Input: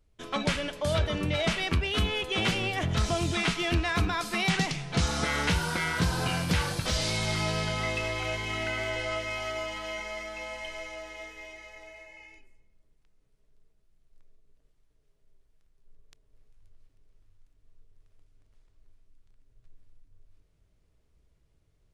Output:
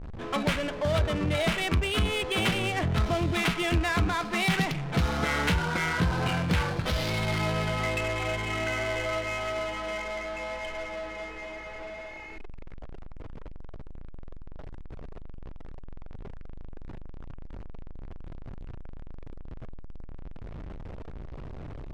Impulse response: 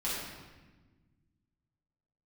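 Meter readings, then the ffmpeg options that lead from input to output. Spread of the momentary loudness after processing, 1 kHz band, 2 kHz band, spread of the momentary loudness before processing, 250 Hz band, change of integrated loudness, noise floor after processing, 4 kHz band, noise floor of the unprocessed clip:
21 LU, +2.0 dB, +1.0 dB, 13 LU, +2.0 dB, +0.5 dB, -39 dBFS, -1.5 dB, -68 dBFS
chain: -af "aeval=exprs='val(0)+0.5*0.0237*sgn(val(0))':c=same,adynamicsmooth=sensitivity=4:basefreq=870"

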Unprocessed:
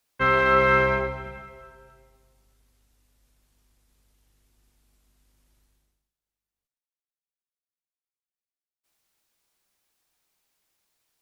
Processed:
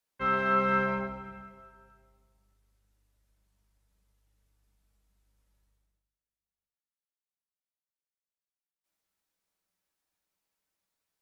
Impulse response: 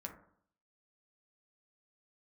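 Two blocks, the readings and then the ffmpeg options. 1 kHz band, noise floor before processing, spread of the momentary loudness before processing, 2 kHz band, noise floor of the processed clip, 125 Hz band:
-5.5 dB, under -85 dBFS, 18 LU, -9.5 dB, under -85 dBFS, -8.0 dB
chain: -filter_complex "[1:a]atrim=start_sample=2205,atrim=end_sample=6615[a];[0:a][a]afir=irnorm=-1:irlink=0,volume=-6dB"

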